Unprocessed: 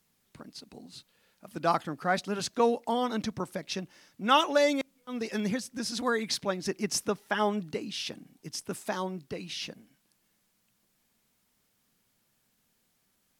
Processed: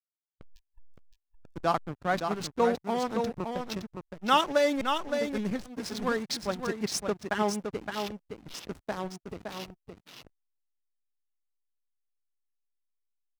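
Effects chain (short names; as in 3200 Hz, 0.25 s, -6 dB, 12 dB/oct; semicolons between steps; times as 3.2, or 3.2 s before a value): backlash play -29 dBFS; spectral noise reduction 28 dB; on a send: echo 0.566 s -6 dB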